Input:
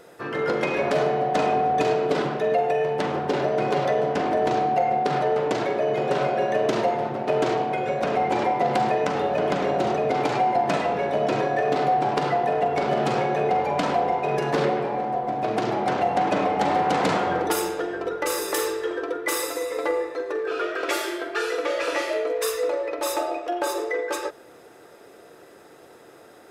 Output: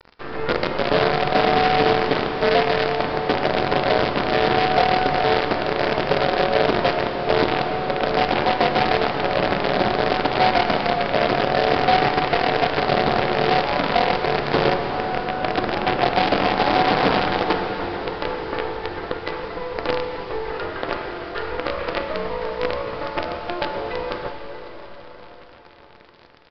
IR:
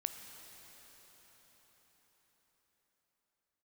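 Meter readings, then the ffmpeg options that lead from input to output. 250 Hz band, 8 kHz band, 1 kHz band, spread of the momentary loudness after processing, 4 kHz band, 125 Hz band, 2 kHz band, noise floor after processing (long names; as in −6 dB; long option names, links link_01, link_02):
+3.0 dB, below −15 dB, +2.5 dB, 10 LU, +9.0 dB, +4.5 dB, +6.5 dB, −43 dBFS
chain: -filter_complex "[0:a]highpass=45,acrossover=split=1800[link_01][link_02];[link_02]acompressor=threshold=-48dB:ratio=6[link_03];[link_01][link_03]amix=inputs=2:normalize=0,acrusher=bits=4:dc=4:mix=0:aa=0.000001,aresample=11025,aresample=44100[link_04];[1:a]atrim=start_sample=2205[link_05];[link_04][link_05]afir=irnorm=-1:irlink=0,volume=4.5dB"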